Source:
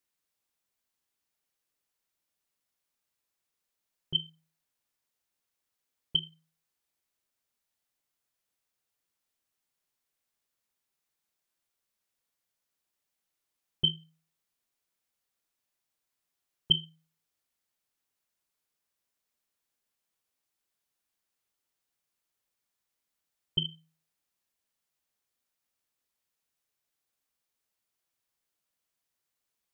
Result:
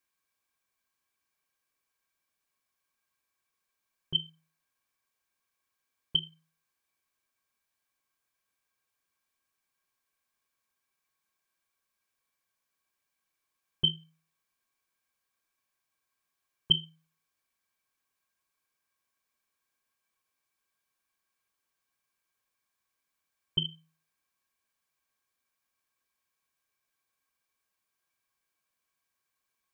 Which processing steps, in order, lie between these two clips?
small resonant body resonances 1.1/1.6/2.3 kHz, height 16 dB, ringing for 70 ms

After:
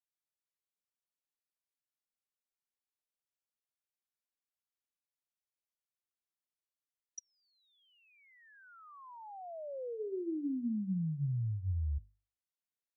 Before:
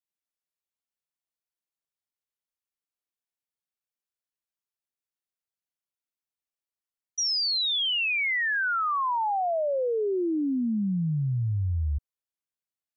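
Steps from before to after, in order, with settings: low-pass that closes with the level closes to 350 Hz; hum notches 50/100/150/200/250/300/350/400/450 Hz; trim -7 dB

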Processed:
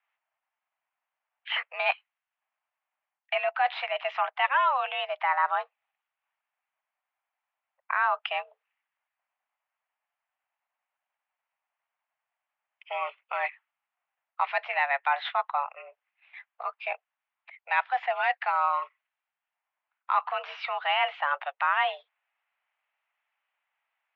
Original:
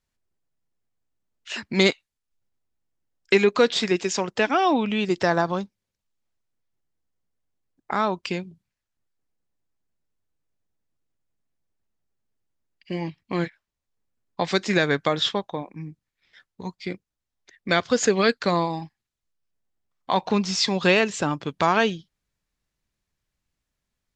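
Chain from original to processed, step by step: reverse; compression 10:1, threshold -27 dBFS, peak gain reduction 14.5 dB; reverse; mistuned SSB +270 Hz 460–2600 Hz; trim +8 dB

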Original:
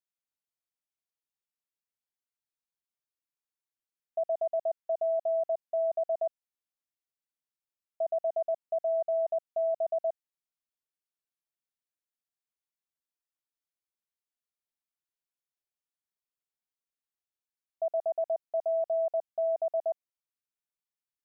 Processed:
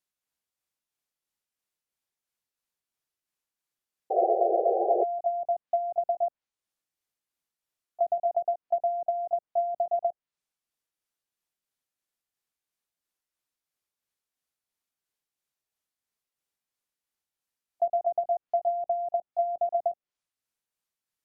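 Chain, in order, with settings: rotating-head pitch shifter +1 st; low-pass that closes with the level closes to 410 Hz, closed at -26 dBFS; painted sound noise, 4.10–5.04 s, 340–810 Hz -33 dBFS; trim +7 dB

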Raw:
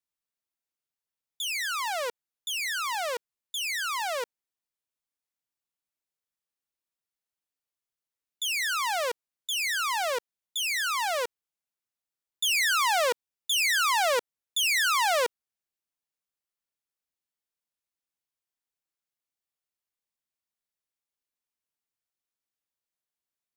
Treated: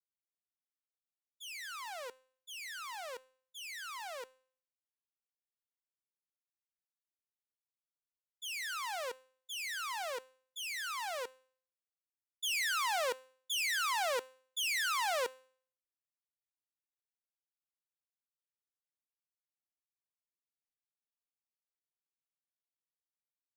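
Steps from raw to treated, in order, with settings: expander -26 dBFS; feedback comb 260 Hz, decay 0.51 s, harmonics all, mix 50%; trim -3.5 dB

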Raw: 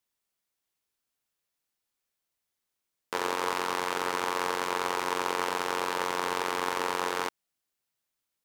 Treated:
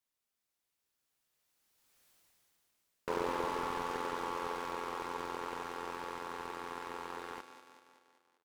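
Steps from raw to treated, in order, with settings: Doppler pass-by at 2.10 s, 14 m/s, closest 3.1 m; feedback delay 193 ms, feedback 58%, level -13.5 dB; slew-rate limiter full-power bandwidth 5 Hz; trim +15 dB

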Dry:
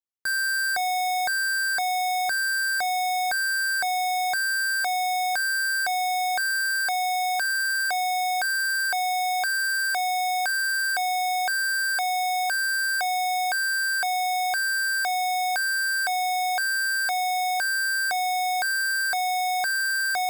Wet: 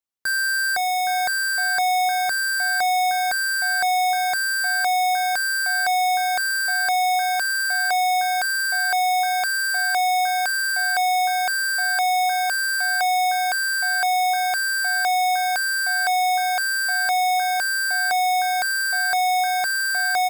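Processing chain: echo from a far wall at 140 m, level -8 dB; trim +3 dB

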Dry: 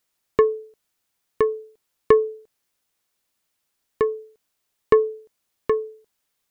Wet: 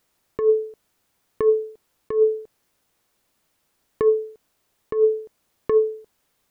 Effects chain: compressor with a negative ratio -24 dBFS, ratio -1; tilt shelf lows +4 dB, about 1.4 kHz; trim +3 dB

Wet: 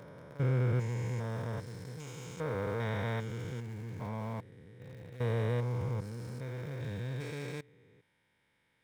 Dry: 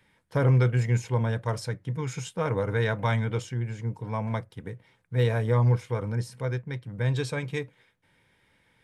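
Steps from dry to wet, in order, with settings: spectrogram pixelated in time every 400 ms; in parallel at -9 dB: small samples zeroed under -34 dBFS; on the sum: bass shelf 76 Hz -8 dB; trim -7.5 dB

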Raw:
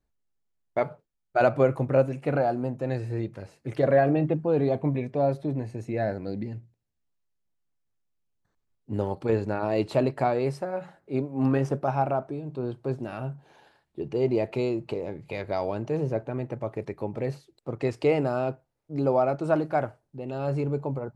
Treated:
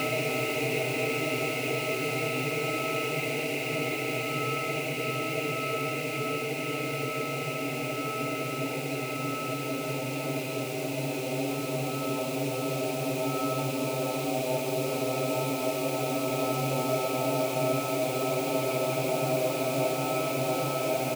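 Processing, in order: block-companded coder 5-bit; resonant high shelf 1.8 kHz +9.5 dB, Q 3; whistle 1.3 kHz -38 dBFS; peaking EQ 530 Hz -4 dB 0.26 oct; on a send: delay 444 ms -5 dB; on the sum: Paulstretch 26×, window 1.00 s, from 18.47 s; trim -3.5 dB

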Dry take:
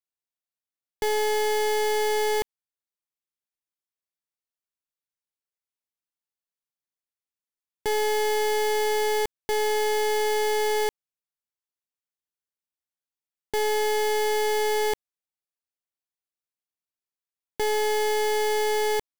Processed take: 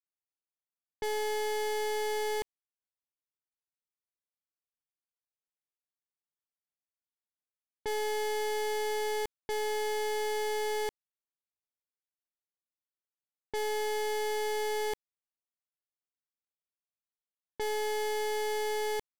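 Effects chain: level-controlled noise filter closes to 1.8 kHz, open at -24 dBFS; trim -8 dB

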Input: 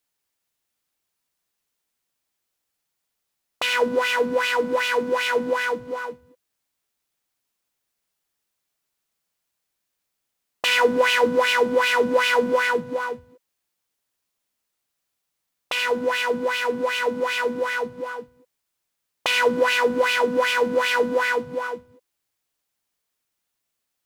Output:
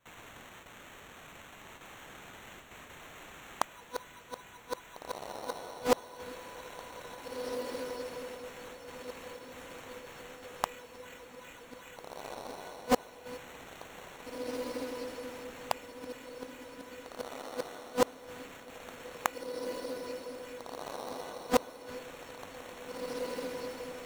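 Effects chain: RIAA curve recording; gate with hold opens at -53 dBFS; 3.66–5.76 s: graphic EQ 125/250/500/1000/2000/8000 Hz -11/-8/-5/+10/-9/-8 dB; compression 2:1, threshold -28 dBFS, peak gain reduction 9 dB; inverted gate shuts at -25 dBFS, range -41 dB; sample-rate reducer 4.9 kHz, jitter 0%; echo that smears into a reverb 1827 ms, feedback 42%, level -4 dB; loudspeaker Doppler distortion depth 0.73 ms; trim +12.5 dB

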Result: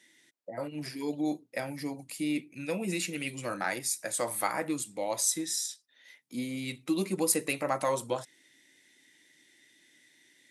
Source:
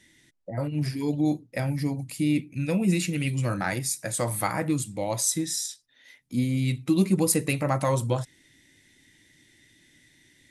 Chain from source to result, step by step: high-pass 330 Hz 12 dB/octave; trim -2.5 dB

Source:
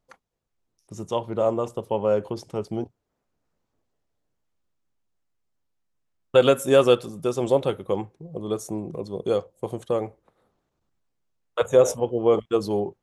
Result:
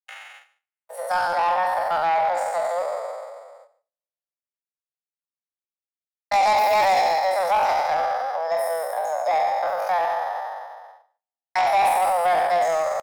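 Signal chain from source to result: spectral sustain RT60 1.83 s; gate -51 dBFS, range -41 dB; steep high-pass 330 Hz 72 dB/octave; treble shelf 4 kHz -8 dB; in parallel at +1 dB: compression 12:1, threshold -29 dBFS, peak gain reduction 19.5 dB; on the sum: saturation -15 dBFS, distortion -11 dB; pitch shift +7.5 st; on a send: delay 148 ms -20 dB

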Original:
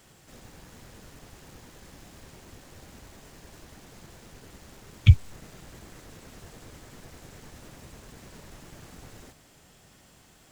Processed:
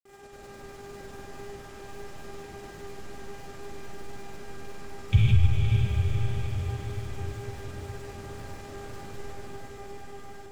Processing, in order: mains buzz 400 Hz, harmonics 6, -48 dBFS -8 dB/octave; algorithmic reverb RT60 1.9 s, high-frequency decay 0.65×, pre-delay 30 ms, DRR -7.5 dB; granulator, grains 20 per s, pitch spread up and down by 0 st; echo that smears into a reverb 485 ms, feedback 58%, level -4 dB; trim -5.5 dB

